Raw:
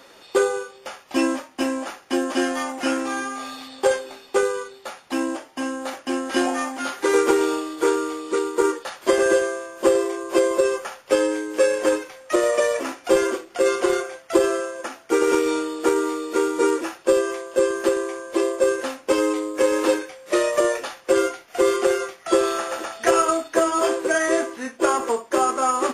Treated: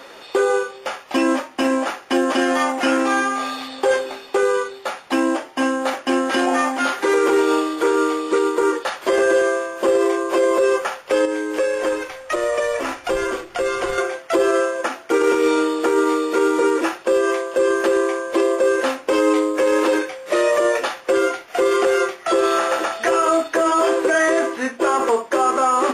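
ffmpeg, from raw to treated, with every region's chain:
-filter_complex "[0:a]asettb=1/sr,asplit=3[a][b][c];[a]atrim=end=11.254[d];[b]atrim=start=11.25:end=13.98,asetpts=PTS-STARTPTS,afade=t=in:d=0.004:c=qsin,afade=t=out:st=2.726:d=0.004:c=qsin,asubboost=boost=11.5:cutoff=110,acompressor=threshold=-28dB:ratio=3:attack=3.2:release=140:knee=1:detection=peak[e];[c]atrim=start=13.976[f];[d][e]acrossfade=d=0.004:c1=hsin:c2=qsin[g];[g][f]acrossfade=d=0.004:c1=qsin:c2=hsin,bass=f=250:g=-5,treble=f=4k:g=-6,bandreject=f=60:t=h:w=6,bandreject=f=120:t=h:w=6,bandreject=f=180:t=h:w=6,bandreject=f=240:t=h:w=6,bandreject=f=300:t=h:w=6,bandreject=f=360:t=h:w=6,alimiter=level_in=17dB:limit=-1dB:release=50:level=0:latency=1,volume=-8dB"

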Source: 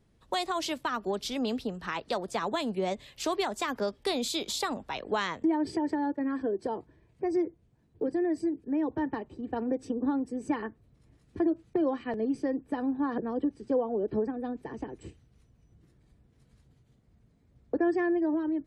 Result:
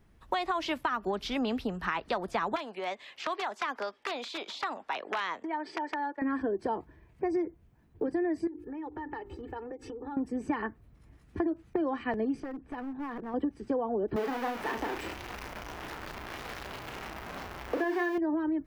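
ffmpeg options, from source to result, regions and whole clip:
-filter_complex "[0:a]asettb=1/sr,asplit=3[a][b][c];[a]atrim=end=2.564[d];[b]atrim=start=2.56:end=6.22,asetpts=PTS-STARTPTS,afade=t=in:d=0.004:c=qsin,afade=t=out:st=3.656:d=0.004:c=qsin,acrossover=split=590|1200|3000[e][f][g][h];[e]acompressor=threshold=-42dB:ratio=3[i];[f]acompressor=threshold=-41dB:ratio=3[j];[g]acompressor=threshold=-46dB:ratio=3[k];[h]acompressor=threshold=-40dB:ratio=3[l];[i][j][k][l]amix=inputs=4:normalize=0,aeval=exprs='(mod(22.4*val(0)+1,2)-1)/22.4':c=same,highpass=350,lowpass=6.5k[m];[c]atrim=start=6.216[n];[d][m]acrossfade=d=0.004:c1=hsin:c2=qsin[o];[o][n]acrossfade=d=0.004:c1=qsin:c2=hsin,asettb=1/sr,asplit=3[p][q][r];[p]atrim=end=8.474[s];[q]atrim=start=8.47:end=10.17,asetpts=PTS-STARTPTS,afade=t=in:d=0.004:c=qsin,afade=t=out:st=1.696:d=0.004:c=qsin,bandreject=f=50:t=h:w=6,bandreject=f=100:t=h:w=6,bandreject=f=150:t=h:w=6,bandreject=f=200:t=h:w=6,bandreject=f=250:t=h:w=6,bandreject=f=300:t=h:w=6,bandreject=f=350:t=h:w=6,bandreject=f=400:t=h:w=6,aecho=1:1:2.3:0.77,atrim=end_sample=74970,acompressor=threshold=-39dB:ratio=8:attack=3.2:release=140:knee=1:detection=peak[t];[r]atrim=start=10.166[u];[s][t]acrossfade=d=0.004:c1=hsin:c2=qsin[v];[v][u]acrossfade=d=0.004:c1=qsin:c2=hsin,asettb=1/sr,asplit=3[w][x][y];[w]atrim=end=12.404[z];[x]atrim=start=12.4:end=13.34,asetpts=PTS-STARTPTS,afade=t=in:d=0.004:c=qsin,afade=t=out:st=0.936:d=0.004:c=qsin,lowpass=5.9k,acompressor=threshold=-41dB:ratio=2.5:attack=3.2:release=140:knee=1:detection=peak,aeval=exprs='clip(val(0),-1,0.0133)':c=same[aa];[y]atrim=start=13.336[ab];[z][aa]acrossfade=d=0.004:c1=hsin:c2=qsin[ac];[ac][ab]acrossfade=d=0.004:c1=qsin:c2=hsin,asettb=1/sr,asplit=3[ad][ae][af];[ad]atrim=end=14.164[ag];[ae]atrim=start=14.16:end=18.18,asetpts=PTS-STARTPTS,afade=t=in:d=0.004:c=qsin,afade=t=out:st=4.016:d=0.004:c=qsin,aeval=exprs='val(0)+0.5*0.02*sgn(val(0))':c=same,bass=f=250:g=-15,treble=f=4k:g=4,asplit=2[ah][ai];[ai]adelay=34,volume=-6.5dB[aj];[ah][aj]amix=inputs=2:normalize=0,atrim=end_sample=177282[ak];[af]atrim=start=18.176[al];[ag][ak]acrossfade=d=0.004:c1=hsin:c2=qsin[am];[am][al]acrossfade=d=0.004:c1=qsin:c2=hsin,acrossover=split=5000[an][ao];[ao]acompressor=threshold=-59dB:ratio=4:attack=1:release=60[ap];[an][ap]amix=inputs=2:normalize=0,equalizer=f=125:t=o:w=1:g=-7,equalizer=f=250:t=o:w=1:g=-4,equalizer=f=500:t=o:w=1:g=-7,equalizer=f=4k:t=o:w=1:g=-7,equalizer=f=8k:t=o:w=1:g=-8,acompressor=threshold=-35dB:ratio=6,volume=8.5dB"

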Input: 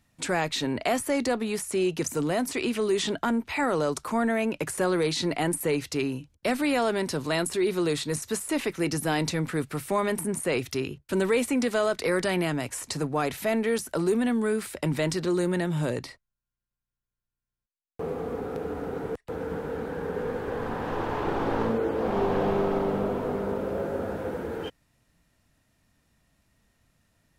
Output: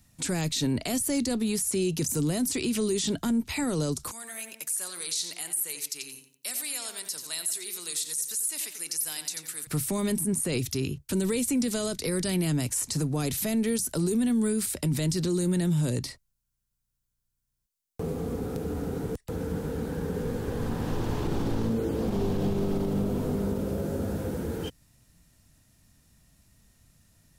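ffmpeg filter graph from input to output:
-filter_complex "[0:a]asettb=1/sr,asplit=3[a][b][c];[a]atrim=end=4.114[d];[b]atrim=start=4.11:end=9.67,asetpts=PTS-STARTPTS,afade=t=in:d=0.004:c=qsin,afade=t=out:st=5.556:d=0.004:c=qsin,aderivative,asplit=2[e][f];[f]adelay=89,lowpass=f=3.7k:p=1,volume=-7.5dB,asplit=2[g][h];[h]adelay=89,lowpass=f=3.7k:p=1,volume=0.35,asplit=2[i][j];[j]adelay=89,lowpass=f=3.7k:p=1,volume=0.35,asplit=2[k][l];[l]adelay=89,lowpass=f=3.7k:p=1,volume=0.35[m];[e][g][i][k][m]amix=inputs=5:normalize=0,atrim=end_sample=245196[n];[c]atrim=start=9.666[o];[d][n]acrossfade=d=0.004:c1=hsin:c2=qsin[p];[p][o]acrossfade=d=0.004:c1=qsin:c2=hsin,bass=f=250:g=8,treble=f=4k:g=11,acrossover=split=400|3000[q][r][s];[r]acompressor=threshold=-42dB:ratio=2.5[t];[q][t][s]amix=inputs=3:normalize=0,alimiter=limit=-19.5dB:level=0:latency=1:release=40"

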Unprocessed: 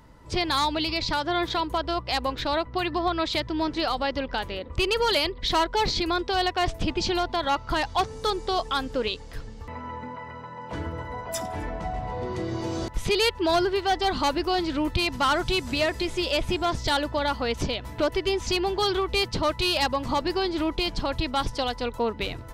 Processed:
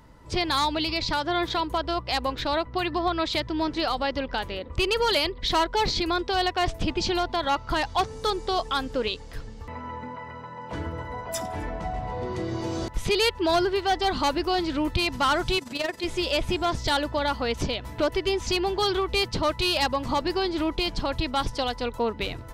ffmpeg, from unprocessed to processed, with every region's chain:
-filter_complex "[0:a]asettb=1/sr,asplit=3[a][b][c];[a]atrim=end=15.584[d];[b]atrim=start=15.58:end=16.04,asetpts=PTS-STARTPTS,afade=t=in:d=0.004:c=qsin,afade=t=out:st=0.456:d=0.004:c=qsin,highpass=180,tremolo=f=22:d=0.75,asoftclip=type=hard:threshold=-21dB[e];[c]atrim=start=16.036[f];[d][e]acrossfade=d=0.004:c1=hsin:c2=qsin[g];[g][f]acrossfade=d=0.004:c1=qsin:c2=hsin"

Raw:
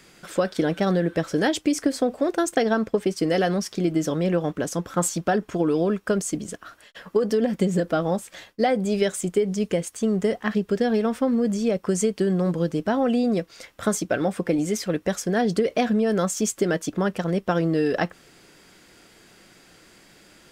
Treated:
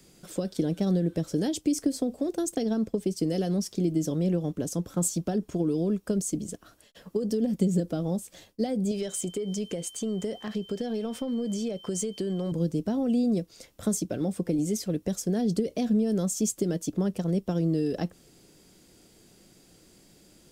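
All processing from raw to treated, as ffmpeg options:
-filter_complex "[0:a]asettb=1/sr,asplit=3[a][b][c];[a]atrim=end=8.914[d];[b]atrim=start=8.91:end=12.52,asetpts=PTS-STARTPTS,afade=t=in:d=0.004:c=qsin,afade=t=out:st=3.606:d=0.004:c=qsin,asplit=2[e][f];[f]highpass=f=720:p=1,volume=11dB,asoftclip=type=tanh:threshold=-8dB[g];[e][g]amix=inputs=2:normalize=0,lowpass=f=5.4k:p=1,volume=-6dB,aeval=exprs='val(0)+0.0126*sin(2*PI*3100*n/s)':c=same,acompressor=threshold=-25dB:ratio=2.5:attack=3.2:release=140:knee=1:detection=peak[h];[c]atrim=start=12.516[i];[d][h]acrossfade=d=0.004:c1=hsin:c2=qsin[j];[j][i]acrossfade=d=0.004:c1=qsin:c2=hsin,equalizer=f=1.6k:t=o:w=2.4:g=-15,acrossover=split=360|3000[k][l][m];[l]acompressor=threshold=-33dB:ratio=6[n];[k][n][m]amix=inputs=3:normalize=0"

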